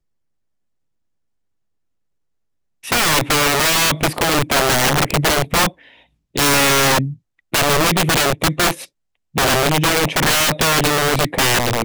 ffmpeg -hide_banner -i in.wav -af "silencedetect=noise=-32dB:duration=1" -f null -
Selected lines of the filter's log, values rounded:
silence_start: 0.00
silence_end: 2.84 | silence_duration: 2.84